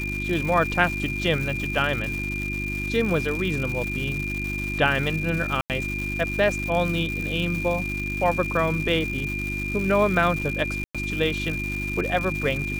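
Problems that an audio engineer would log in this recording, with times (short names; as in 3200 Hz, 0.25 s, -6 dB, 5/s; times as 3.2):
crackle 360/s -29 dBFS
hum 50 Hz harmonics 7 -31 dBFS
tone 2400 Hz -29 dBFS
5.61–5.7 gap 88 ms
10.84–10.95 gap 0.106 s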